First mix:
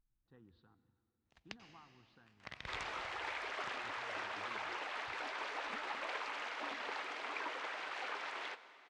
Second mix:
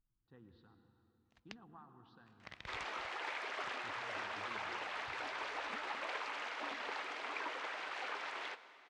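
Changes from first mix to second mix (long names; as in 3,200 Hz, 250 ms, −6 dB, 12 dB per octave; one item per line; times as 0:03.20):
speech: send +10.5 dB
first sound: send off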